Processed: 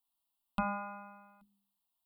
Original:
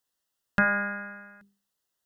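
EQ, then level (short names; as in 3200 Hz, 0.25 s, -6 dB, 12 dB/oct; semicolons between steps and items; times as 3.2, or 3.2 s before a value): notches 50/100/150/200 Hz; fixed phaser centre 470 Hz, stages 6; fixed phaser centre 1700 Hz, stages 6; 0.0 dB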